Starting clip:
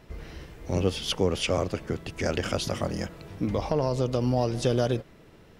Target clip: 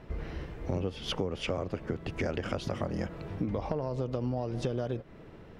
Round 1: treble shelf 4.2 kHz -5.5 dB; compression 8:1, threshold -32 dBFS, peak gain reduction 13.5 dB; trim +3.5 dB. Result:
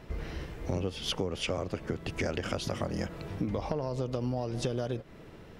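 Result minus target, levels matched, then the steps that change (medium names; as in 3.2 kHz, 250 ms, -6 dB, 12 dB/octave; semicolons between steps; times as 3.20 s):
8 kHz band +7.0 dB
change: treble shelf 4.2 kHz -17 dB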